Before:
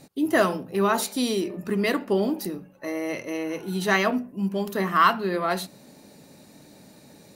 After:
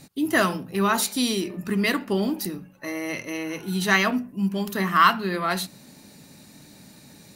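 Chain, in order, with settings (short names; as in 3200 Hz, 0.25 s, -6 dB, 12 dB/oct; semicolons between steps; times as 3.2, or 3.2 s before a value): bell 520 Hz -9 dB 1.7 oct; gain +4.5 dB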